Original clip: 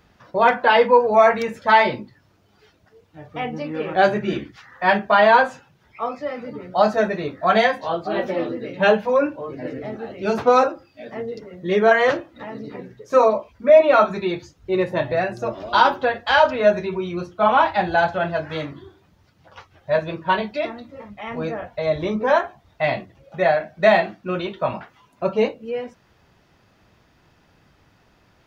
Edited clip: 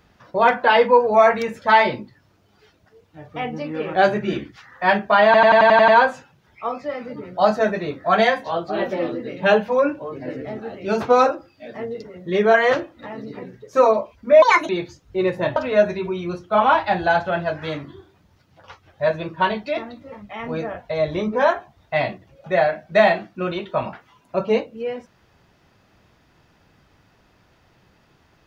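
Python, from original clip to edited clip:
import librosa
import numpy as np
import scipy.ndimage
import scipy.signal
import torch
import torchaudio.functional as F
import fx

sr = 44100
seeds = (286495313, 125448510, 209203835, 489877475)

y = fx.edit(x, sr, fx.stutter(start_s=5.25, slice_s=0.09, count=8),
    fx.speed_span(start_s=13.79, length_s=0.44, speed=1.62),
    fx.cut(start_s=15.1, length_s=1.34), tone=tone)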